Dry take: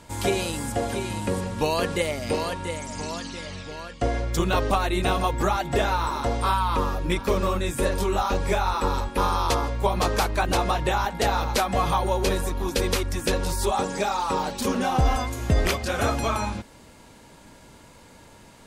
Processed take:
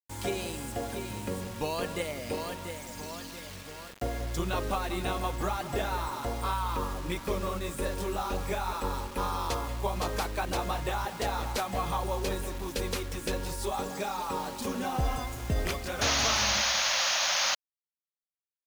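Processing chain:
bucket-brigade delay 187 ms, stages 4,096, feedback 36%, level −12 dB
sound drawn into the spectrogram noise, 0:16.01–0:17.55, 520–6,800 Hz −19 dBFS
bit-depth reduction 6 bits, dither none
level −8.5 dB

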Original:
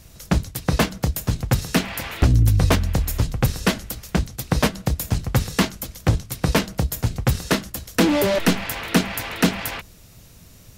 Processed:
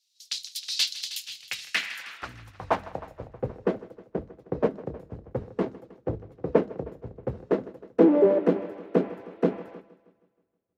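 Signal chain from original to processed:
band-pass filter sweep 4,200 Hz → 430 Hz, 0:00.91–0:03.47
hum removal 52.24 Hz, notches 5
on a send: echo machine with several playback heads 158 ms, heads first and second, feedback 59%, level −15 dB
on the sum: multiband upward and downward expander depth 100%

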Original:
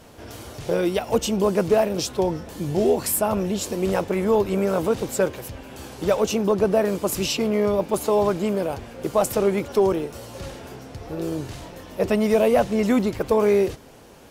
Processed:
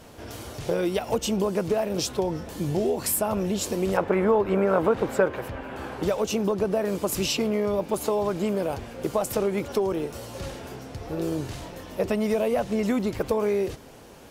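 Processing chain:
downward compressor, threshold −21 dBFS, peak gain reduction 8 dB
0:03.97–0:06.03: drawn EQ curve 130 Hz 0 dB, 1,500 Hz +8 dB, 6,000 Hz −11 dB

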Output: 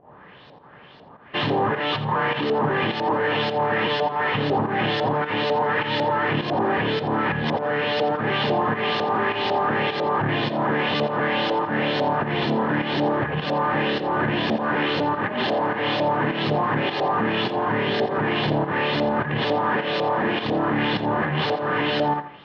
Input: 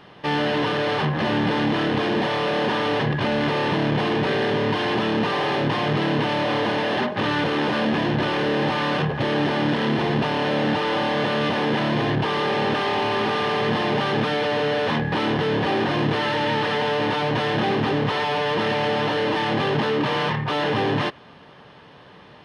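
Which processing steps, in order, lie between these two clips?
played backwards from end to start
fake sidechain pumping 103 BPM, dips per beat 1, −11 dB, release 171 ms
auto-filter low-pass saw up 2 Hz 610–5,100 Hz
on a send: tape delay 85 ms, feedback 35%, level −11.5 dB, low-pass 4,800 Hz
on the sum: level −2 dB

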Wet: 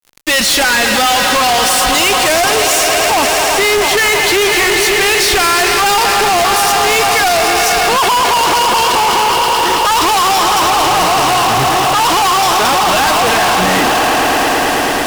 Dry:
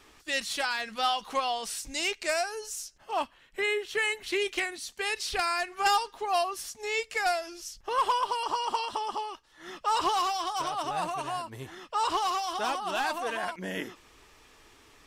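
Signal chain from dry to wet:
echo that builds up and dies away 109 ms, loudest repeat 5, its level −14 dB
fuzz pedal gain 49 dB, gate −48 dBFS
level +3 dB

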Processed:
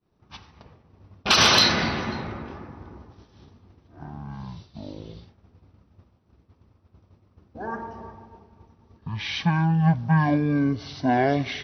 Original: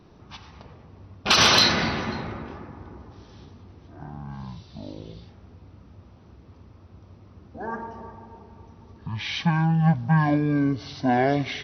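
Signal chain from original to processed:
downward expander −40 dBFS

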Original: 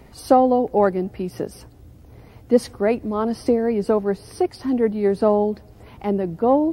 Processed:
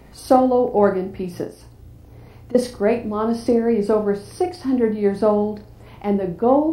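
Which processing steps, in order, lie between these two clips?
0:01.44–0:02.55: downward compressor, threshold −38 dBFS, peak gain reduction 23 dB
flutter between parallel walls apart 5.9 metres, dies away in 0.32 s

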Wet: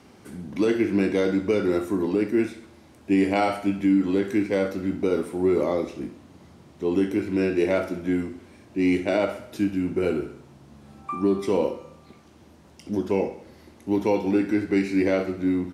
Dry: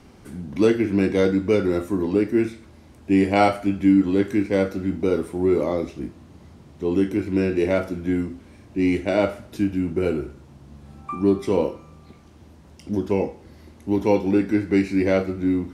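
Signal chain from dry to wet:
high-pass filter 190 Hz 6 dB per octave
brickwall limiter −12.5 dBFS, peak gain reduction 7 dB
repeating echo 66 ms, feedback 53%, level −14 dB

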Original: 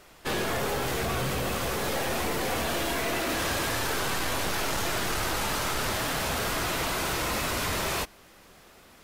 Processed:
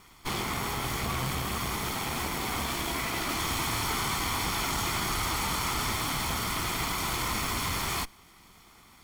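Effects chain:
lower of the sound and its delayed copy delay 0.91 ms

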